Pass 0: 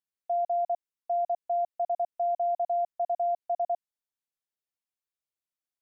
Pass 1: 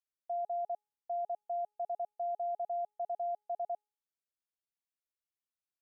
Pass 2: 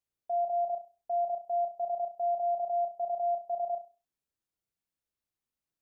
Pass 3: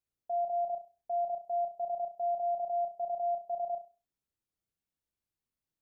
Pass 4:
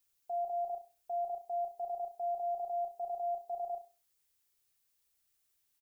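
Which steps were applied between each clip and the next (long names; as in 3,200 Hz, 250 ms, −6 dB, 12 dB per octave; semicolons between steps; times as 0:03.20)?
hum removal 418.1 Hz, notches 30; level −8 dB
low-shelf EQ 440 Hz +11.5 dB; on a send: flutter between parallel walls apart 5.7 metres, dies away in 0.3 s
low-shelf EQ 350 Hz +7 dB; level −3.5 dB
comb filter 2.4 ms, depth 66%; background noise blue −75 dBFS; level −2 dB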